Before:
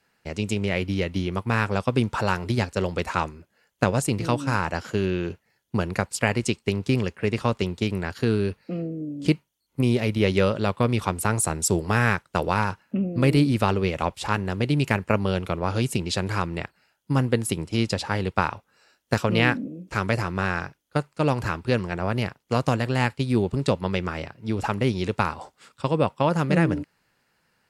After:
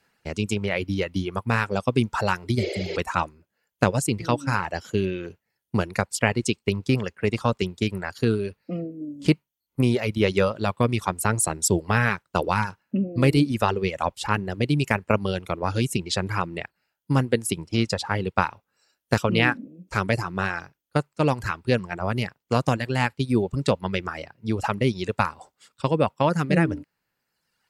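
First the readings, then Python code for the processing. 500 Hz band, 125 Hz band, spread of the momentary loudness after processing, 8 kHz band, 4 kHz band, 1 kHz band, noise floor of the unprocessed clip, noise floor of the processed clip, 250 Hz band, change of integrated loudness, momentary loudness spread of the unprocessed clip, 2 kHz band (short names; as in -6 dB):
0.0 dB, -0.5 dB, 8 LU, +1.5 dB, +0.5 dB, +0.5 dB, -72 dBFS, -81 dBFS, -0.5 dB, 0.0 dB, 8 LU, +0.5 dB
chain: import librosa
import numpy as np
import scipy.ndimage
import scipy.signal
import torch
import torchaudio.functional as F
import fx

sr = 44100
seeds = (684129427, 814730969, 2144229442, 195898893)

y = fx.spec_repair(x, sr, seeds[0], start_s=2.62, length_s=0.32, low_hz=310.0, high_hz=7300.0, source='before')
y = fx.dereverb_blind(y, sr, rt60_s=1.3)
y = y * librosa.db_to_amplitude(1.5)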